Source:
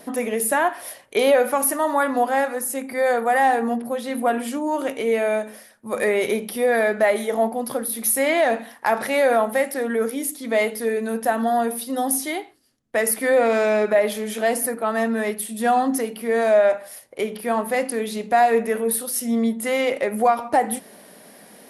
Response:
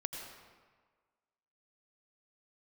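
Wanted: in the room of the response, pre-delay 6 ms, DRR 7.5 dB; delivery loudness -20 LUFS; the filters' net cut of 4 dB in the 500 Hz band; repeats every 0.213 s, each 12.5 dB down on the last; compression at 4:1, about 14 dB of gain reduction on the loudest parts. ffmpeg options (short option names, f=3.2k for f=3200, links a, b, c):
-filter_complex "[0:a]equalizer=f=500:t=o:g=-5,acompressor=threshold=-33dB:ratio=4,aecho=1:1:213|426|639:0.237|0.0569|0.0137,asplit=2[a][b];[1:a]atrim=start_sample=2205,adelay=6[c];[b][c]afir=irnorm=-1:irlink=0,volume=-8dB[d];[a][d]amix=inputs=2:normalize=0,volume=13.5dB"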